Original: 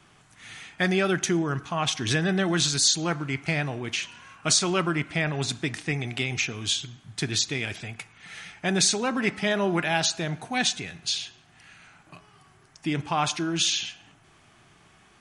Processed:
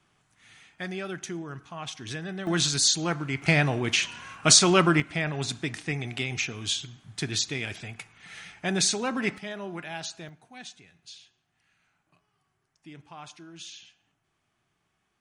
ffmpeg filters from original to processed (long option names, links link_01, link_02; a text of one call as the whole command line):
ffmpeg -i in.wav -af "asetnsamples=nb_out_samples=441:pad=0,asendcmd='2.47 volume volume -1dB;3.42 volume volume 5dB;5 volume volume -2.5dB;9.38 volume volume -12dB;10.29 volume volume -19dB',volume=-11dB" out.wav